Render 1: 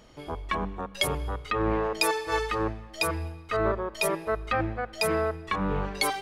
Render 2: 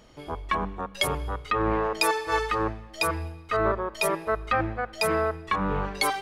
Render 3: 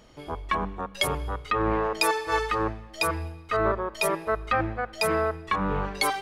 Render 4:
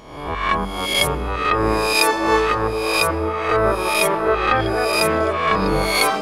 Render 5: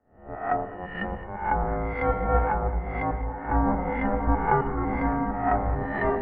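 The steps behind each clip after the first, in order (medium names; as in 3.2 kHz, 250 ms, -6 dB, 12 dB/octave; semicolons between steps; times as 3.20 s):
dynamic bell 1.2 kHz, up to +4 dB, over -38 dBFS, Q 1
no audible change
reverse spectral sustain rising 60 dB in 0.80 s; repeats whose band climbs or falls 608 ms, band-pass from 320 Hz, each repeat 0.7 oct, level 0 dB; trim +5 dB
echo whose repeats swap between lows and highs 108 ms, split 1.3 kHz, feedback 60%, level -8.5 dB; mistuned SSB -380 Hz 320–2100 Hz; three bands expanded up and down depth 70%; trim -5.5 dB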